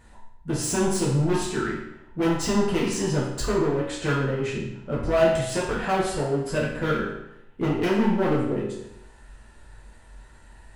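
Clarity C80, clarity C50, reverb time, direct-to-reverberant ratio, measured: 5.0 dB, 2.0 dB, 0.80 s, -6.5 dB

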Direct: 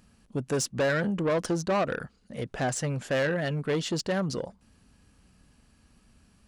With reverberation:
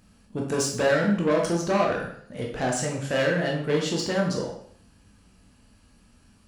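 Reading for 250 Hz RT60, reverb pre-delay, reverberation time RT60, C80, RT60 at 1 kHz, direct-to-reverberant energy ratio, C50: 0.55 s, 6 ms, 0.60 s, 8.5 dB, 0.60 s, -1.0 dB, 5.0 dB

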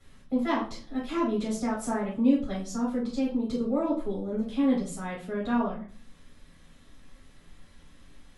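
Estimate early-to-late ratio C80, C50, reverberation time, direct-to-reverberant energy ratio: 12.0 dB, 6.0 dB, 0.45 s, -6.5 dB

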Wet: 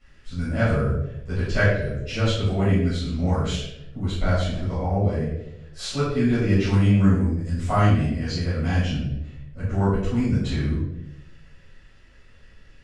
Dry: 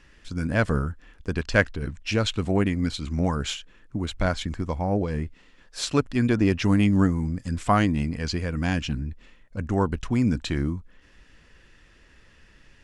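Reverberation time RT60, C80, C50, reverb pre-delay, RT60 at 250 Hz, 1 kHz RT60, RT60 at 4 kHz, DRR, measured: 0.90 s, 4.0 dB, 0.5 dB, 9 ms, 0.95 s, 0.75 s, 0.60 s, -13.5 dB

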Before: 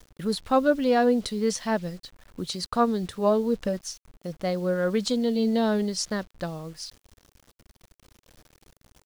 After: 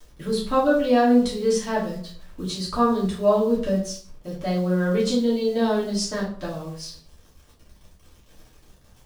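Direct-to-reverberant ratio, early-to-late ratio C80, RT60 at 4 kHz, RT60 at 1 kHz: -7.5 dB, 11.0 dB, 0.35 s, 0.50 s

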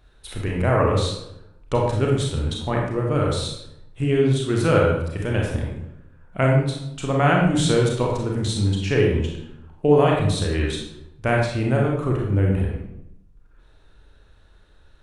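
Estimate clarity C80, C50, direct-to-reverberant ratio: 5.0 dB, 1.5 dB, -1.5 dB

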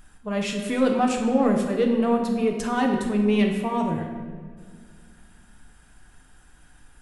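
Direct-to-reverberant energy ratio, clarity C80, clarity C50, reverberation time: 1.0 dB, 6.5 dB, 4.5 dB, 1.9 s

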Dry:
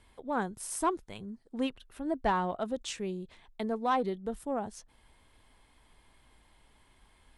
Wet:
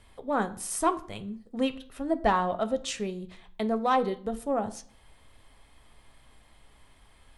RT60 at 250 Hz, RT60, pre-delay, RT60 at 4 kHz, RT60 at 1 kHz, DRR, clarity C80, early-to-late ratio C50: 0.65 s, 0.50 s, 7 ms, 0.40 s, 0.50 s, 9.5 dB, 21.0 dB, 16.5 dB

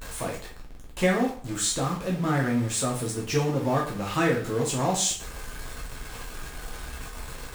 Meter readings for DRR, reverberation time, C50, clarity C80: -3.0 dB, 0.45 s, 6.5 dB, 11.0 dB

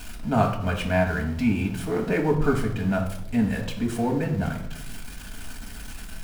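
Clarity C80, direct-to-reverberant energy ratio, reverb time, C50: 11.5 dB, -0.5 dB, 0.75 s, 8.5 dB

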